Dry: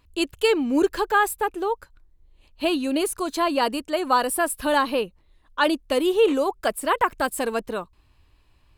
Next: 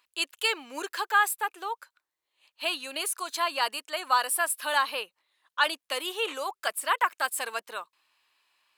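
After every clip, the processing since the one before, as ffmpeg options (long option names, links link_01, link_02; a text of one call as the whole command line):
ffmpeg -i in.wav -af "highpass=1100" out.wav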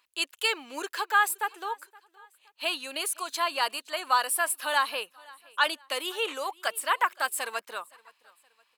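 ffmpeg -i in.wav -af "aecho=1:1:519|1038:0.0631|0.024" out.wav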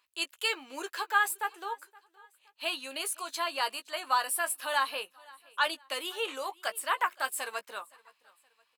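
ffmpeg -i in.wav -filter_complex "[0:a]asplit=2[link_01][link_02];[link_02]adelay=15,volume=-9dB[link_03];[link_01][link_03]amix=inputs=2:normalize=0,volume=-4dB" out.wav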